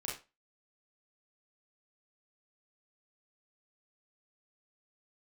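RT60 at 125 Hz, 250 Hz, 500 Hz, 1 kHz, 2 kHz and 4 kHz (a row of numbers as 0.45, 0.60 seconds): 0.25, 0.25, 0.30, 0.30, 0.25, 0.25 seconds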